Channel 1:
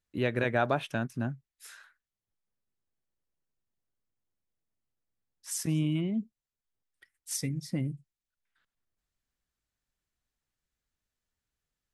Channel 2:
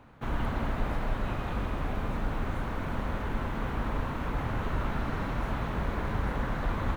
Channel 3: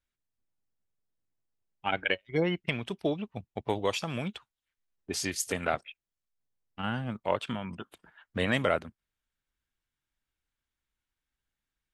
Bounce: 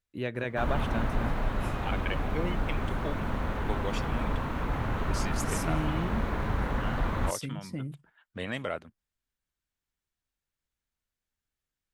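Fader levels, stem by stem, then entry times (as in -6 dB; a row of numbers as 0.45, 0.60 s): -4.0, +1.0, -7.0 dB; 0.00, 0.35, 0.00 s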